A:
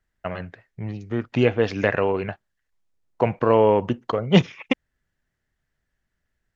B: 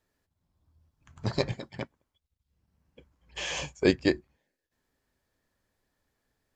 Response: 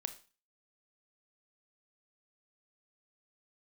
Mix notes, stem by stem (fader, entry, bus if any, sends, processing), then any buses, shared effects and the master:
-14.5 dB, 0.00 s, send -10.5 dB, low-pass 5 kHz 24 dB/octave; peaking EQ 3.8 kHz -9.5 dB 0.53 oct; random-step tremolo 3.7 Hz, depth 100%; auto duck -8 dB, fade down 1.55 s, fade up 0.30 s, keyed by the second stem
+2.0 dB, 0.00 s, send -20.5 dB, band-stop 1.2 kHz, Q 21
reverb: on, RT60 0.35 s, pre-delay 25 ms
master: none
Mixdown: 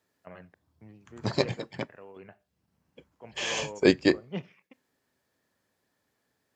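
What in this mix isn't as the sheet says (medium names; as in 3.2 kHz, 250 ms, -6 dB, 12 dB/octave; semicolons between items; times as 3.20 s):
stem B: missing band-stop 1.2 kHz, Q 21; master: extra high-pass 130 Hz 12 dB/octave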